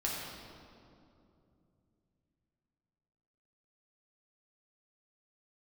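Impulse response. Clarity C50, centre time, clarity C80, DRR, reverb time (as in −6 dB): −1.0 dB, 116 ms, 1.0 dB, −4.5 dB, 2.7 s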